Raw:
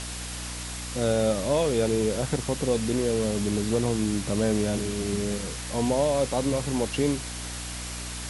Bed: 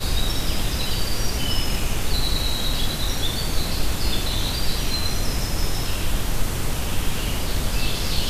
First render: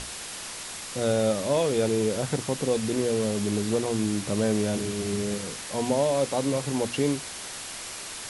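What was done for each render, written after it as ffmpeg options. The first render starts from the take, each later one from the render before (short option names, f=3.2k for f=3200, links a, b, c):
-af "bandreject=f=60:t=h:w=6,bandreject=f=120:t=h:w=6,bandreject=f=180:t=h:w=6,bandreject=f=240:t=h:w=6,bandreject=f=300:t=h:w=6"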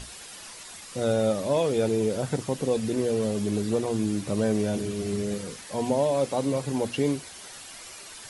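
-af "afftdn=nr=9:nf=-38"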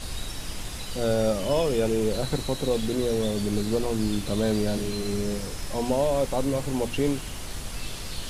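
-filter_complex "[1:a]volume=-12dB[a];[0:a][a]amix=inputs=2:normalize=0"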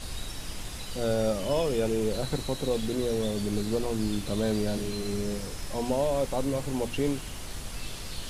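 -af "volume=-3dB"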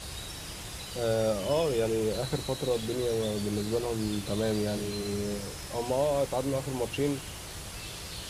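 -af "highpass=59,equalizer=f=240:w=7.8:g=-12"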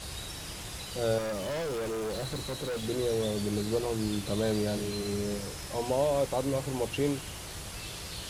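-filter_complex "[0:a]asettb=1/sr,asplit=3[a][b][c];[a]atrim=end=1.184[d];[b]atrim=start=1.18:end=2.84,asetpts=PTS-STARTPTS,afade=t=in:d=0.004:c=qsin,afade=t=out:st=1.656:d=0.004:c=qsin,asoftclip=type=hard:threshold=-31dB[e];[c]atrim=start=2.836[f];[d][e]acrossfade=d=0.004:c1=hsin:c2=qsin[g];[g][f]acrossfade=d=0.004:c1=qsin:c2=hsin"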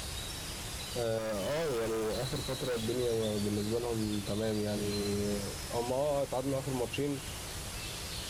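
-af "alimiter=limit=-23dB:level=0:latency=1:release=219,acompressor=mode=upward:threshold=-39dB:ratio=2.5"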